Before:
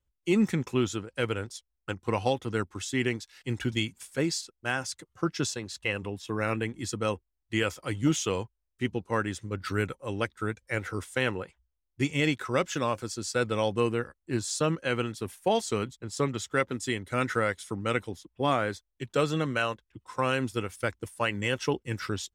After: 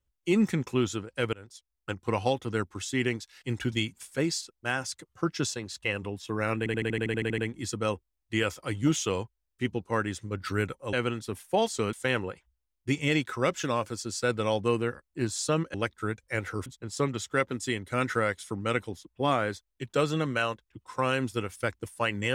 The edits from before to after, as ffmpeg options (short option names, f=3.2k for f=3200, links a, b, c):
-filter_complex "[0:a]asplit=16[a][b][c][d][e][f][g][h][i][j][k][l][m][n][o][p];[a]atrim=end=1.33,asetpts=PTS-STARTPTS,afade=t=out:st=1.326:d=0.004:c=hsin:silence=0.1[q];[b]atrim=start=1.33:end=6.662,asetpts=PTS-STARTPTS,afade=t=in:d=0.58:silence=0.1[r];[c]atrim=start=6.578:end=6.662[s];[d]atrim=start=6.578:end=6.662[t];[e]atrim=start=6.578:end=6.662[u];[f]atrim=start=6.578:end=6.662[v];[g]atrim=start=6.578:end=6.662[w];[h]atrim=start=6.578:end=6.662[x];[i]atrim=start=6.578:end=6.662[y];[j]atrim=start=6.578:end=6.662[z];[k]atrim=start=6.578:end=6.662[aa];[l]atrim=start=6.578:end=10.132[ab];[m]atrim=start=14.858:end=15.862[ac];[n]atrim=start=11.048:end=14.862[ad];[o]atrim=start=10.128:end=11.052[ae];[p]atrim=start=15.858[af];[q][r]concat=n=2:v=0:a=1[ag];[ag][s]acrossfade=d=0.004:c1=hsin:c2=hsin[ah];[ah][t]acrossfade=d=0.004:c1=hsin:c2=hsin[ai];[ai][u]acrossfade=d=0.004:c1=hsin:c2=hsin[aj];[aj][v]acrossfade=d=0.004:c1=hsin:c2=hsin[ak];[ak][w]acrossfade=d=0.004:c1=hsin:c2=hsin[al];[al][x]acrossfade=d=0.004:c1=hsin:c2=hsin[am];[am][y]acrossfade=d=0.004:c1=hsin:c2=hsin[an];[an][z]acrossfade=d=0.004:c1=hsin:c2=hsin[ao];[ao][aa]acrossfade=d=0.004:c1=hsin:c2=hsin[ap];[ap][ab]acrossfade=d=0.004:c1=hsin:c2=hsin[aq];[aq][ac]acrossfade=d=0.004:c1=hsin:c2=hsin[ar];[ar][ad]acrossfade=d=0.004:c1=hsin:c2=hsin[as];[as][ae]acrossfade=d=0.004:c1=hsin:c2=hsin[at];[at][af]acrossfade=d=0.004:c1=hsin:c2=hsin"